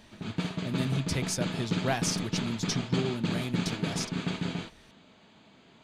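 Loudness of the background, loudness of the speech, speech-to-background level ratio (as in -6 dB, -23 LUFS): -33.0 LUFS, -33.5 LUFS, -0.5 dB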